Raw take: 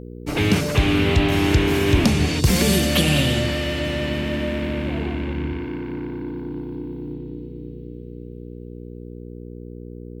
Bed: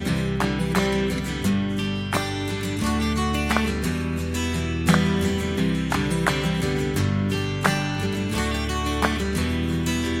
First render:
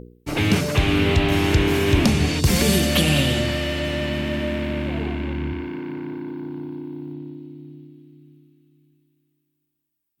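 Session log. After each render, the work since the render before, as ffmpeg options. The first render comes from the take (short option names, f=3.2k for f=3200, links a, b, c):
-af "bandreject=f=60:t=h:w=4,bandreject=f=120:t=h:w=4,bandreject=f=180:t=h:w=4,bandreject=f=240:t=h:w=4,bandreject=f=300:t=h:w=4,bandreject=f=360:t=h:w=4,bandreject=f=420:t=h:w=4,bandreject=f=480:t=h:w=4"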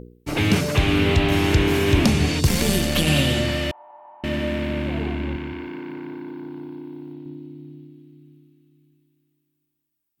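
-filter_complex "[0:a]asettb=1/sr,asplit=3[a][b][c];[a]atrim=end=2.474[d];[b]atrim=start=2.47:end=3.07,asetpts=PTS-STARTPTS,afade=t=in:d=0.004:c=qsin,afade=t=out:st=0.596:d=0.004:c=qsin,aeval=exprs='if(lt(val(0),0),0.447*val(0),val(0))':c=same[e];[c]atrim=start=3.066[f];[d][e]acrossfade=d=0.004:c1=hsin:c2=qsin[g];[g][f]acrossfade=d=0.004:c1=qsin:c2=hsin,asettb=1/sr,asplit=3[h][i][j];[h]atrim=end=3.714[k];[i]atrim=start=3.71:end=4.24,asetpts=PTS-STARTPTS,afade=t=in:d=0.004:c=qsin,afade=t=out:st=0.526:d=0.004:c=qsin,asuperpass=centerf=870:order=4:qfactor=4.4[l];[j]atrim=start=4.236[m];[k][l]acrossfade=d=0.004:c1=hsin:c2=qsin[n];[n][m]acrossfade=d=0.004:c1=qsin:c2=hsin,asettb=1/sr,asplit=3[o][p][q];[o]atrim=end=5.364[r];[p]atrim=start=5.36:end=7.26,asetpts=PTS-STARTPTS,afade=t=in:d=0.004:c=qsin,afade=t=out:st=1.896:d=0.004:c=qsin,lowshelf=f=200:g=-9.5[s];[q]atrim=start=7.256[t];[r][s]acrossfade=d=0.004:c1=hsin:c2=qsin[u];[u][t]acrossfade=d=0.004:c1=qsin:c2=hsin"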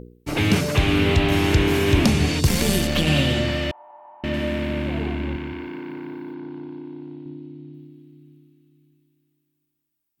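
-filter_complex "[0:a]asettb=1/sr,asplit=3[a][b][c];[a]atrim=end=2.874[d];[b]atrim=start=2.87:end=4.34,asetpts=PTS-STARTPTS,afade=t=in:d=0.004:c=qsin,afade=t=out:st=1.466:d=0.004:c=qsin,equalizer=f=11k:w=0.8:g=-10[e];[c]atrim=start=4.336[f];[d][e]acrossfade=d=0.004:c1=hsin:c2=qsin[g];[g][f]acrossfade=d=0.004:c1=qsin:c2=hsin,asettb=1/sr,asplit=3[h][i][j];[h]atrim=end=6.344[k];[i]atrim=start=6.34:end=7.74,asetpts=PTS-STARTPTS,afade=t=in:d=0.004:c=qsin,afade=t=out:st=1.396:d=0.004:c=qsin,lowpass=5.7k[l];[j]atrim=start=7.736[m];[k][l]acrossfade=d=0.004:c1=hsin:c2=qsin[n];[n][m]acrossfade=d=0.004:c1=qsin:c2=hsin"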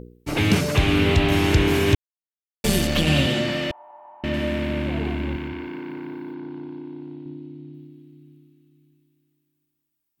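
-filter_complex "[0:a]asettb=1/sr,asplit=3[a][b][c];[a]atrim=end=3.264[d];[b]atrim=start=3.26:end=3.7,asetpts=PTS-STARTPTS,afade=t=in:d=0.004:c=qsin,afade=t=out:st=0.436:d=0.004:c=qsin,highpass=f=130:w=0.5412,highpass=f=130:w=1.3066[e];[c]atrim=start=3.696[f];[d][e]acrossfade=d=0.004:c1=hsin:c2=qsin[g];[g][f]acrossfade=d=0.004:c1=qsin:c2=hsin,asettb=1/sr,asplit=3[h][i][j];[h]atrim=end=5.054[k];[i]atrim=start=5.05:end=5.48,asetpts=PTS-STARTPTS,afade=t=in:d=0.004:c=qsin,afade=t=out:st=0.426:d=0.004:c=qsin,highshelf=f=8.8k:g=5.5[l];[j]atrim=start=5.476[m];[k][l]acrossfade=d=0.004:c1=hsin:c2=qsin[n];[n][m]acrossfade=d=0.004:c1=qsin:c2=hsin,asplit=3[o][p][q];[o]atrim=end=1.95,asetpts=PTS-STARTPTS,afade=t=out:st=1.946:d=0.004:c=hsin[r];[p]atrim=start=1.95:end=2.64,asetpts=PTS-STARTPTS,volume=0[s];[q]atrim=start=2.64,asetpts=PTS-STARTPTS,afade=t=in:d=0.004:c=hsin[t];[r][s][t]concat=n=3:v=0:a=1"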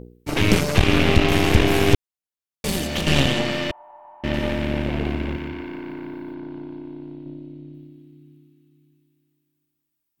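-af "aeval=exprs='0.531*(cos(1*acos(clip(val(0)/0.531,-1,1)))-cos(1*PI/2))+0.168*(cos(4*acos(clip(val(0)/0.531,-1,1)))-cos(4*PI/2))':c=same"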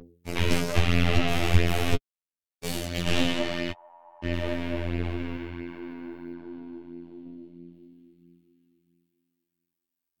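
-af "afftfilt=real='hypot(re,im)*cos(PI*b)':imag='0':win_size=2048:overlap=0.75,flanger=delay=7.3:depth=3.9:regen=20:speed=1.5:shape=sinusoidal"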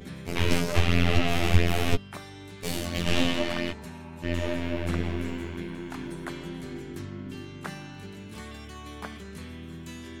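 -filter_complex "[1:a]volume=-17dB[a];[0:a][a]amix=inputs=2:normalize=0"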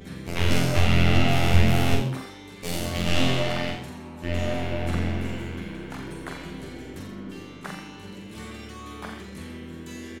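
-filter_complex "[0:a]asplit=2[a][b];[b]adelay=45,volume=-4dB[c];[a][c]amix=inputs=2:normalize=0,asplit=5[d][e][f][g][h];[e]adelay=85,afreqshift=130,volume=-8.5dB[i];[f]adelay=170,afreqshift=260,volume=-19dB[j];[g]adelay=255,afreqshift=390,volume=-29.4dB[k];[h]adelay=340,afreqshift=520,volume=-39.9dB[l];[d][i][j][k][l]amix=inputs=5:normalize=0"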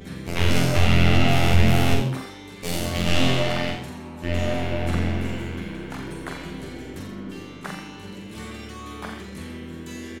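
-af "volume=2.5dB,alimiter=limit=-3dB:level=0:latency=1"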